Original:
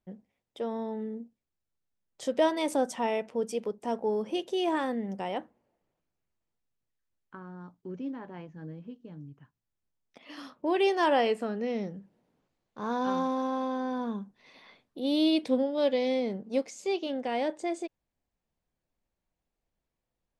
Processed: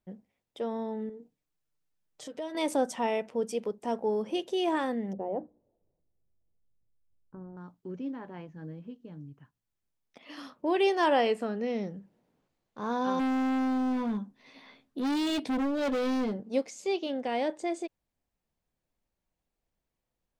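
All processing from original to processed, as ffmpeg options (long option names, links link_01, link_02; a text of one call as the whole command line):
ffmpeg -i in.wav -filter_complex "[0:a]asettb=1/sr,asplit=3[link_01][link_02][link_03];[link_01]atrim=end=1.094[link_04];[link_02]atrim=start=1.09:end=2.55,asetpts=PTS-STARTPTS,afade=type=in:duration=0.004:curve=qsin,afade=type=out:start_time=1.456:duration=0.004:curve=qsin,aecho=1:1:6.6:0.59,atrim=end_sample=64386,acompressor=threshold=-46dB:ratio=2:attack=3.2:release=140:knee=1:detection=peak[link_05];[link_03]atrim=start=2.546[link_06];[link_04][link_05]acrossfade=duration=0.004:curve1=hsin:curve2=qsin[link_07];[link_07][link_06]acrossfade=duration=0.004:curve1=qsin:curve2=hsin,asettb=1/sr,asplit=3[link_08][link_09][link_10];[link_08]atrim=end=5.134[link_11];[link_09]atrim=start=5.13:end=7.57,asetpts=PTS-STARTPTS,afade=type=in:duration=0.004:curve=qsin,afade=type=out:start_time=2.436:duration=0.004:curve=qsin,bandreject=frequency=60:width_type=h:width=6,bandreject=frequency=120:width_type=h:width=6,bandreject=frequency=180:width_type=h:width=6,bandreject=frequency=240:width_type=h:width=6,bandreject=frequency=300:width_type=h:width=6,asubboost=boost=6.5:cutoff=160,lowpass=frequency=520:width_type=q:width=1.5[link_12];[link_10]atrim=start=7.566[link_13];[link_11][link_12]acrossfade=duration=0.004:curve1=hsin:curve2=qsin[link_14];[link_14][link_13]acrossfade=duration=0.004:curve1=qsin:curve2=hsin,asettb=1/sr,asplit=3[link_15][link_16][link_17];[link_15]atrim=end=13.194[link_18];[link_16]atrim=start=13.19:end=16.4,asetpts=PTS-STARTPTS,afade=type=in:duration=0.004:curve=qsin,afade=type=out:start_time=3.206:duration=0.004:curve=qsin,equalizer=frequency=260:width=7.8:gain=14,asplit=2[link_19][link_20];[link_20]adelay=14,volume=-7dB[link_21];[link_19][link_21]amix=inputs=2:normalize=0,atrim=end_sample=141561,asoftclip=type=hard:threshold=-27dB[link_22];[link_17]atrim=start=16.396[link_23];[link_18][link_22]acrossfade=duration=0.004:curve1=hsin:curve2=qsin[link_24];[link_24][link_23]acrossfade=duration=0.004:curve1=qsin:curve2=hsin" out.wav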